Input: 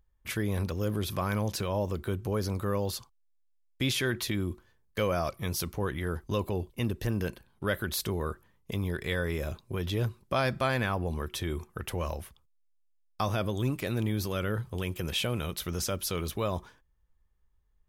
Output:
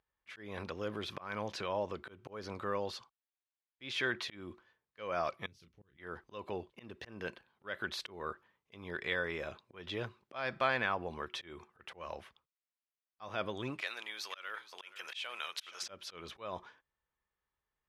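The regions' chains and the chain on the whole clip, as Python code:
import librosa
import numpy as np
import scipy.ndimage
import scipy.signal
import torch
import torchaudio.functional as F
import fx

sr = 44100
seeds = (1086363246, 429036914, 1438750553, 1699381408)

y = fx.chain(x, sr, fx.tone_stack(knobs='10-0-1'),
    fx.doubler(ms=30.0, db=-8.5), at=(5.46, 5.97))
y = fx.chain(y, sr, fx.highpass(hz=940.0, slope=12),
    fx.high_shelf(hz=3900.0, db=9.5),
    fx.echo_single(ms=477, db=-15.0), at=(13.81, 15.83))
y = scipy.signal.sosfilt(scipy.signal.butter(2, 3200.0, 'lowpass', fs=sr, output='sos'), y)
y = fx.auto_swell(y, sr, attack_ms=230.0)
y = fx.highpass(y, sr, hz=850.0, slope=6)
y = y * librosa.db_to_amplitude(1.0)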